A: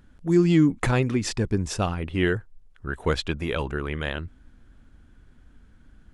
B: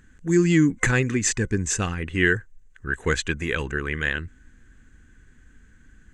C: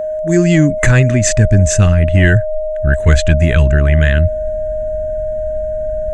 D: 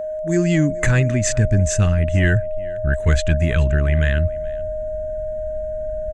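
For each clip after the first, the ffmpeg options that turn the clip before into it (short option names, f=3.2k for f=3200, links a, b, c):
-af "superequalizer=8b=0.398:9b=0.562:11b=2.82:12b=1.58:15b=3.98"
-af "asubboost=boost=10.5:cutoff=160,aeval=exprs='val(0)+0.0631*sin(2*PI*620*n/s)':c=same,apsyclip=9dB,volume=-2dB"
-af "aecho=1:1:427:0.0794,volume=-6.5dB"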